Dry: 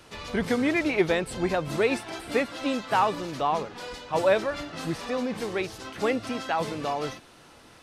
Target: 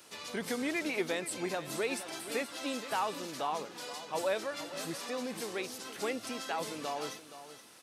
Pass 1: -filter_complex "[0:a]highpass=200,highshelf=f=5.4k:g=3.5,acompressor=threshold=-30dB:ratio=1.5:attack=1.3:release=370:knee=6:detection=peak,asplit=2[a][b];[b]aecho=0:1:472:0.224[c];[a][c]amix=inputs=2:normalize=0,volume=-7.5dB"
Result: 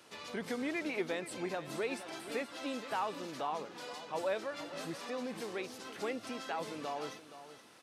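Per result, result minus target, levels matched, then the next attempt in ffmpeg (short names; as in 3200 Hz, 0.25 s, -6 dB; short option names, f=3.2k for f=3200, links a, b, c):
8000 Hz band -6.0 dB; compressor: peak gain reduction +2.5 dB
-filter_complex "[0:a]highpass=200,highshelf=f=5.4k:g=15,acompressor=threshold=-30dB:ratio=1.5:attack=1.3:release=370:knee=6:detection=peak,asplit=2[a][b];[b]aecho=0:1:472:0.224[c];[a][c]amix=inputs=2:normalize=0,volume=-7.5dB"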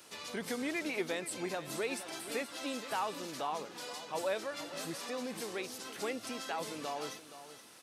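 compressor: peak gain reduction +2.5 dB
-filter_complex "[0:a]highpass=200,highshelf=f=5.4k:g=15,acompressor=threshold=-22.5dB:ratio=1.5:attack=1.3:release=370:knee=6:detection=peak,asplit=2[a][b];[b]aecho=0:1:472:0.224[c];[a][c]amix=inputs=2:normalize=0,volume=-7.5dB"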